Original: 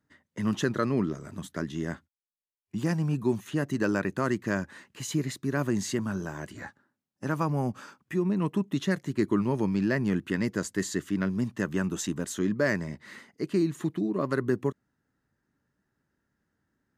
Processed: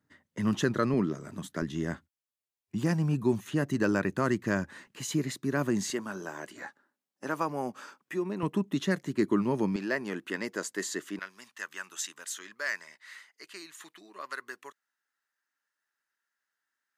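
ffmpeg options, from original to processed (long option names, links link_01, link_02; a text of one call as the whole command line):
ffmpeg -i in.wav -af "asetnsamples=nb_out_samples=441:pad=0,asendcmd='0.94 highpass f 120;1.62 highpass f 41;4.87 highpass f 140;5.9 highpass f 340;8.43 highpass f 160;9.76 highpass f 410;11.19 highpass f 1400',highpass=57" out.wav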